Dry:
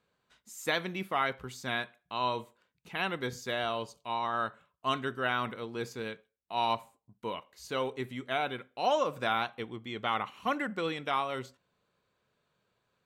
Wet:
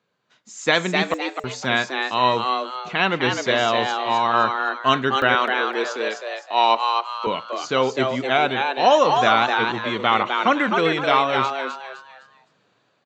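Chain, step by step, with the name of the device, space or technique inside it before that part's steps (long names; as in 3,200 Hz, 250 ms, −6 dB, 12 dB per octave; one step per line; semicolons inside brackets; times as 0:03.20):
call with lost packets (high-pass filter 110 Hz 24 dB per octave; downsampling to 16,000 Hz; automatic gain control gain up to 9 dB; dropped packets of 60 ms bursts)
0:05.35–0:07.27: high-pass filter 300 Hz 24 dB per octave
echo with shifted repeats 256 ms, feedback 35%, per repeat +130 Hz, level −4.5 dB
level +3.5 dB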